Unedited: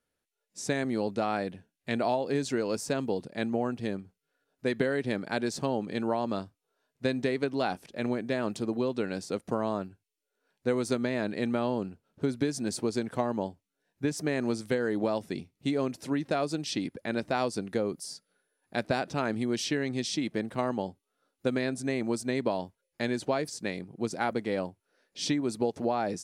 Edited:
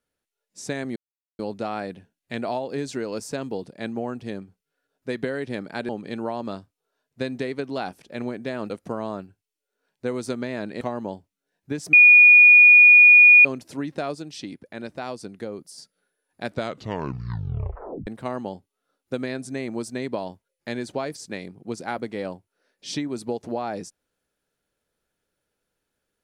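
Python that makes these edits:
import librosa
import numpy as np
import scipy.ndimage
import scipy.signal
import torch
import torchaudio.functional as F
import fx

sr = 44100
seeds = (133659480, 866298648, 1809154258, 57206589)

y = fx.edit(x, sr, fx.insert_silence(at_s=0.96, length_s=0.43),
    fx.cut(start_s=5.46, length_s=0.27),
    fx.cut(start_s=8.54, length_s=0.78),
    fx.cut(start_s=11.43, length_s=1.71),
    fx.bleep(start_s=14.26, length_s=1.52, hz=2450.0, db=-7.5),
    fx.clip_gain(start_s=16.48, length_s=1.63, db=-4.0),
    fx.tape_stop(start_s=18.8, length_s=1.6), tone=tone)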